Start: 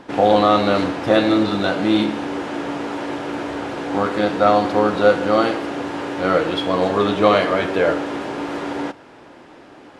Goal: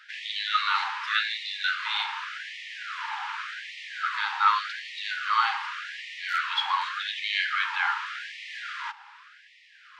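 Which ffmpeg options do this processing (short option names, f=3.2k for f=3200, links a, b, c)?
-filter_complex "[0:a]highpass=400,lowpass=4.7k,asettb=1/sr,asplit=3[a][b][c];[a]atrim=end=6.254[d];[b]atrim=start=6.25:end=6.83,asetpts=PTS-STARTPTS,afade=t=in:d=0.004:c=qsin,afade=t=out:st=0.576:d=0.004:c=qsin,asoftclip=type=hard:threshold=-9.5dB[e];[c]atrim=start=6.826[f];[d][e]acrossfade=d=0.004:c1=hsin:c2=qsin[g];[g][f]acrossfade=d=0.004:c1=qsin:c2=hsin,afftfilt=real='re*gte(b*sr/1024,770*pow(1800/770,0.5+0.5*sin(2*PI*0.86*pts/sr)))':imag='im*gte(b*sr/1024,770*pow(1800/770,0.5+0.5*sin(2*PI*0.86*pts/sr)))':win_size=1024:overlap=0.75"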